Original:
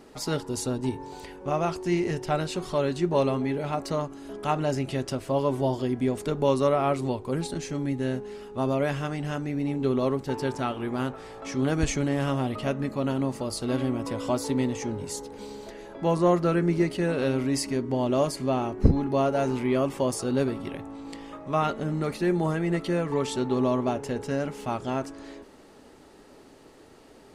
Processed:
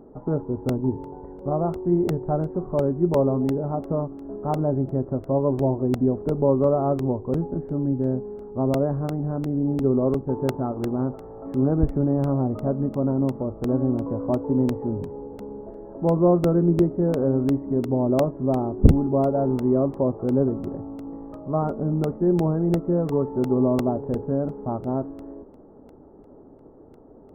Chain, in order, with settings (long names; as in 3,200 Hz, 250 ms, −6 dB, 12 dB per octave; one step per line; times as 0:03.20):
Gaussian smoothing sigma 10 samples
regular buffer underruns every 0.35 s, samples 64, repeat, from 0:00.69
level +5.5 dB